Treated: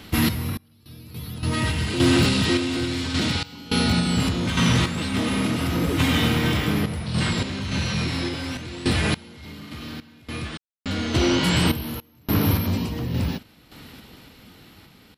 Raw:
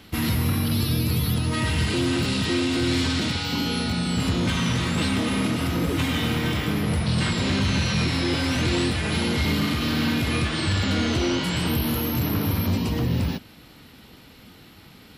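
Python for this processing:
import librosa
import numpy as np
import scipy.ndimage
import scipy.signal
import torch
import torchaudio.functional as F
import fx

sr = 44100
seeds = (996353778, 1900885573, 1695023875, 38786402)

y = fx.tremolo_random(x, sr, seeds[0], hz=3.5, depth_pct=100)
y = np.clip(y, -10.0 ** (-17.5 / 20.0), 10.0 ** (-17.5 / 20.0))
y = y * 10.0 ** (6.0 / 20.0)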